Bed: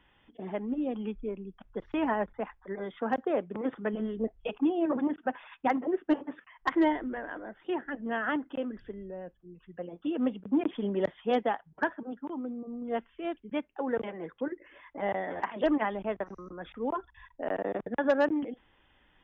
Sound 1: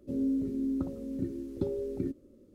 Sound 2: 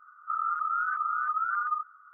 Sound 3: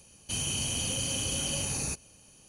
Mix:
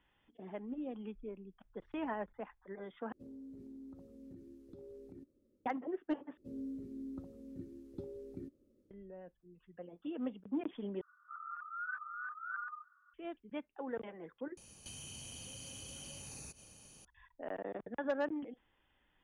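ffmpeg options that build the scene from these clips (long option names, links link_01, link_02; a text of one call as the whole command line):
ffmpeg -i bed.wav -i cue0.wav -i cue1.wav -i cue2.wav -filter_complex "[1:a]asplit=2[link_01][link_02];[0:a]volume=-10dB[link_03];[link_01]acompressor=threshold=-31dB:ratio=6:attack=3.2:release=140:knee=1:detection=peak[link_04];[2:a]aecho=1:1:1.2:0.77[link_05];[3:a]acompressor=threshold=-45dB:ratio=6:attack=3.2:release=140:knee=1:detection=peak[link_06];[link_03]asplit=5[link_07][link_08][link_09][link_10][link_11];[link_07]atrim=end=3.124[link_12];[link_04]atrim=end=2.54,asetpts=PTS-STARTPTS,volume=-16.5dB[link_13];[link_08]atrim=start=5.656:end=6.374[link_14];[link_02]atrim=end=2.54,asetpts=PTS-STARTPTS,volume=-13.5dB[link_15];[link_09]atrim=start=8.906:end=11.014[link_16];[link_05]atrim=end=2.13,asetpts=PTS-STARTPTS,volume=-10dB[link_17];[link_10]atrim=start=13.136:end=14.574[link_18];[link_06]atrim=end=2.48,asetpts=PTS-STARTPTS,volume=-2dB[link_19];[link_11]atrim=start=17.046[link_20];[link_12][link_13]acrossfade=duration=0.004:curve1=hsin:curve2=hsin[link_21];[link_21][link_14]acrossfade=duration=0.004:curve1=hsin:curve2=hsin[link_22];[link_22][link_15]acrossfade=duration=0.004:curve1=hsin:curve2=hsin[link_23];[link_23][link_16]acrossfade=duration=0.004:curve1=hsin:curve2=hsin[link_24];[link_24][link_17]acrossfade=duration=0.004:curve1=hsin:curve2=hsin[link_25];[link_25][link_18]acrossfade=duration=0.004:curve1=hsin:curve2=hsin[link_26];[link_26][link_19]acrossfade=duration=0.004:curve1=hsin:curve2=hsin[link_27];[link_27][link_20]acrossfade=duration=0.004:curve1=hsin:curve2=hsin" out.wav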